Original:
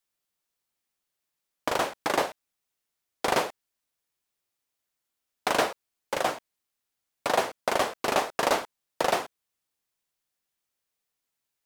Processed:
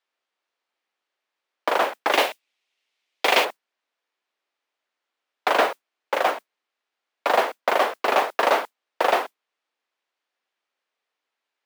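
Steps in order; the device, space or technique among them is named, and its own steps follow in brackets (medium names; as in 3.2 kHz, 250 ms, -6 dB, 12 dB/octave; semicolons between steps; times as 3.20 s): carbon microphone (band-pass 400–3100 Hz; saturation -17.5 dBFS, distortion -16 dB; modulation noise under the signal 23 dB); steep high-pass 190 Hz 48 dB/octave; 2.12–3.45 s: resonant high shelf 1.9 kHz +7 dB, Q 1.5; trim +8 dB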